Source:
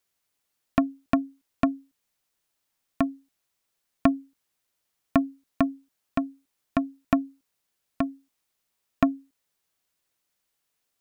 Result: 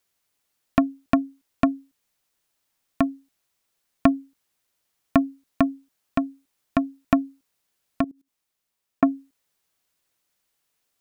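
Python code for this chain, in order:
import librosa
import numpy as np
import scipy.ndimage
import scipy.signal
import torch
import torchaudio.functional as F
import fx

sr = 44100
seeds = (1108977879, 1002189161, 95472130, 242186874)

y = fx.level_steps(x, sr, step_db=21, at=(8.04, 9.03))
y = y * 10.0 ** (3.0 / 20.0)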